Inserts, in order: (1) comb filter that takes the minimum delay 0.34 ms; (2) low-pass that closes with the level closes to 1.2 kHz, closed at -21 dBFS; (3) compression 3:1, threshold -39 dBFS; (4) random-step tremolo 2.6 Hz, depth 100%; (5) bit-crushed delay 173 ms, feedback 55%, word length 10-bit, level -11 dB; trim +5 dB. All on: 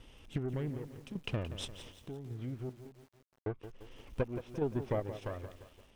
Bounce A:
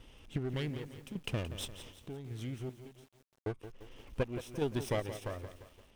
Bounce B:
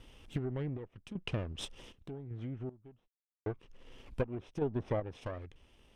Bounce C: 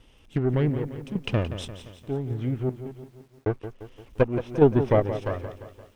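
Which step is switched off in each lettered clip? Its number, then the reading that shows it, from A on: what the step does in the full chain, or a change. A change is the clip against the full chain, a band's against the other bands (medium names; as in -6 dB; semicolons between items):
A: 2, 8 kHz band +5.5 dB; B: 5, momentary loudness spread change -2 LU; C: 3, mean gain reduction 10.0 dB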